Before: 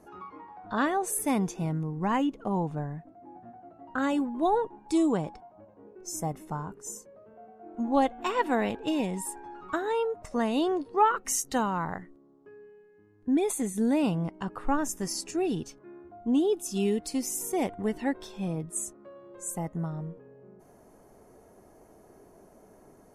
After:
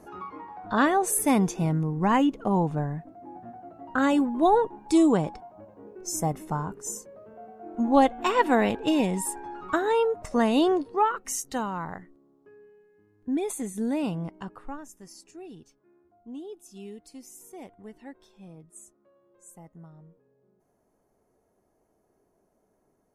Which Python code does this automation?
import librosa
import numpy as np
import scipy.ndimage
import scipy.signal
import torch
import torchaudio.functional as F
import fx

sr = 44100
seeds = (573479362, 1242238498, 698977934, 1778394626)

y = fx.gain(x, sr, db=fx.line((10.72, 5.0), (11.12, -2.5), (14.39, -2.5), (14.87, -15.0)))